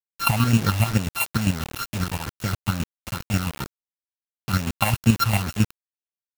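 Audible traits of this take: a buzz of ramps at a fixed pitch in blocks of 32 samples; phasing stages 6, 2.2 Hz, lowest notch 360–1300 Hz; chopped level 7.5 Hz, depth 60%, duty 30%; a quantiser's noise floor 6-bit, dither none

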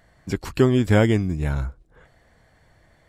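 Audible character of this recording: noise floor -59 dBFS; spectral tilt -6.5 dB/octave

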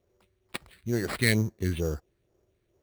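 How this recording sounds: phasing stages 4, 2.2 Hz, lowest notch 780–4100 Hz; aliases and images of a low sample rate 6.2 kHz, jitter 0%

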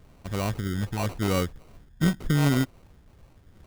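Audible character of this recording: phasing stages 6, 0.85 Hz, lowest notch 530–1500 Hz; aliases and images of a low sample rate 1.7 kHz, jitter 0%

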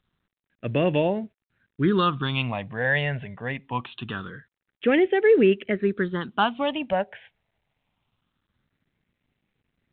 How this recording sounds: a quantiser's noise floor 12-bit, dither none; phasing stages 6, 0.24 Hz, lowest notch 320–1100 Hz; µ-law

